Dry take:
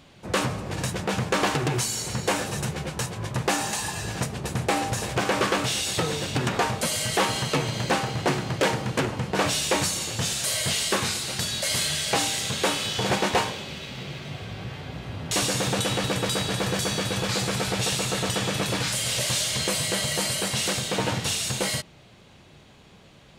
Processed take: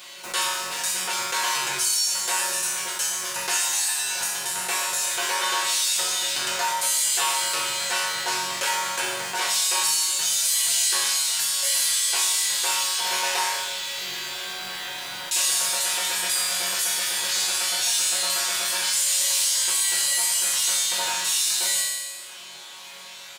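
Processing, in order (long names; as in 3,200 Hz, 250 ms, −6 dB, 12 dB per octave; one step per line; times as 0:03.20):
high-pass filter 520 Hz 6 dB per octave
spectral tilt +4 dB per octave
comb filter 5.6 ms, depth 73%
in parallel at −3.5 dB: bit-depth reduction 6 bits, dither none
on the sum: resonators tuned to a chord F#2 major, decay 0.78 s
hollow resonant body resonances 960/1,500 Hz, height 13 dB, ringing for 85 ms
envelope flattener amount 50%
level +4.5 dB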